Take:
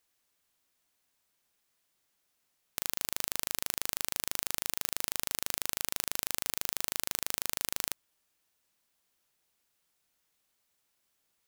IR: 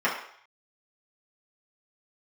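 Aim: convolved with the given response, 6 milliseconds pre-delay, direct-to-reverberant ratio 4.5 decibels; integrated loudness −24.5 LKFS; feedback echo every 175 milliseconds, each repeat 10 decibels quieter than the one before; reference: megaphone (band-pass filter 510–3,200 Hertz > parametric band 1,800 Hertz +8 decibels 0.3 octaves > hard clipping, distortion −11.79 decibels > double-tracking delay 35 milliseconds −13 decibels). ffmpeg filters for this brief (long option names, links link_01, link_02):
-filter_complex "[0:a]aecho=1:1:175|350|525|700:0.316|0.101|0.0324|0.0104,asplit=2[link_01][link_02];[1:a]atrim=start_sample=2205,adelay=6[link_03];[link_02][link_03]afir=irnorm=-1:irlink=0,volume=-19.5dB[link_04];[link_01][link_04]amix=inputs=2:normalize=0,highpass=510,lowpass=3200,equalizer=frequency=1800:width_type=o:width=0.3:gain=8,asoftclip=type=hard:threshold=-24.5dB,asplit=2[link_05][link_06];[link_06]adelay=35,volume=-13dB[link_07];[link_05][link_07]amix=inputs=2:normalize=0,volume=16dB"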